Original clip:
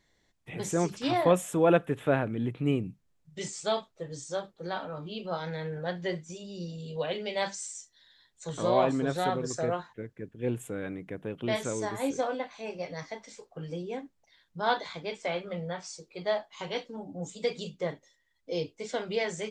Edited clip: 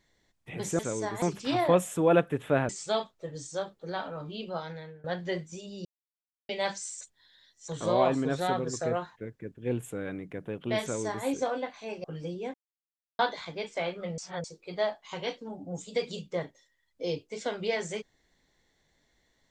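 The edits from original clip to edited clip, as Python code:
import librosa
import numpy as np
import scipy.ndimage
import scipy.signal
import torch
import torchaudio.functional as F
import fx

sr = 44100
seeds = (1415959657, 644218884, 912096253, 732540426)

y = fx.edit(x, sr, fx.cut(start_s=2.26, length_s=1.2),
    fx.fade_out_to(start_s=5.22, length_s=0.59, floor_db=-21.5),
    fx.silence(start_s=6.62, length_s=0.64),
    fx.reverse_span(start_s=7.78, length_s=0.67),
    fx.duplicate(start_s=11.59, length_s=0.43, to_s=0.79),
    fx.cut(start_s=12.81, length_s=0.71),
    fx.silence(start_s=14.02, length_s=0.65),
    fx.reverse_span(start_s=15.66, length_s=0.26), tone=tone)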